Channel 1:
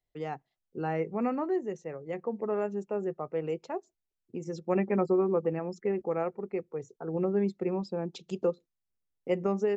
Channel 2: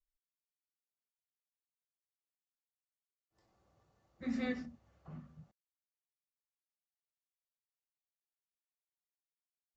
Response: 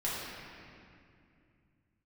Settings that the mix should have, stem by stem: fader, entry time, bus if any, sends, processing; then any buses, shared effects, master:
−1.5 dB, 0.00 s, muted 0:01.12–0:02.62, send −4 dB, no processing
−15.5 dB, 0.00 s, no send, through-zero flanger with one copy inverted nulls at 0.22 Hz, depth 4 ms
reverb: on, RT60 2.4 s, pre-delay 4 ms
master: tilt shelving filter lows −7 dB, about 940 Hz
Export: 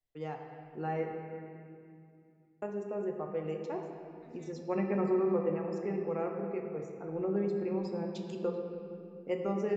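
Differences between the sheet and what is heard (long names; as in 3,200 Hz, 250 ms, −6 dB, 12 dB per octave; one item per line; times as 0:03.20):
stem 1 −1.5 dB → −9.0 dB
master: missing tilt shelving filter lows −7 dB, about 940 Hz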